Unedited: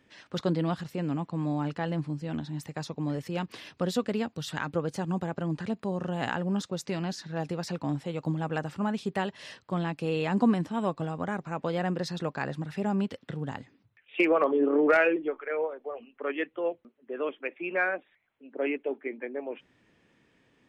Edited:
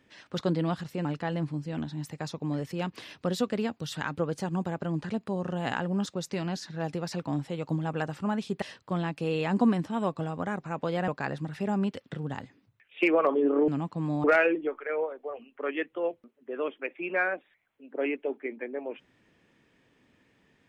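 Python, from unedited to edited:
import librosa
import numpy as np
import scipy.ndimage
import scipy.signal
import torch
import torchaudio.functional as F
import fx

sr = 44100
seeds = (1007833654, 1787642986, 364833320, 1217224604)

y = fx.edit(x, sr, fx.move(start_s=1.05, length_s=0.56, to_s=14.85),
    fx.cut(start_s=9.18, length_s=0.25),
    fx.cut(start_s=11.89, length_s=0.36), tone=tone)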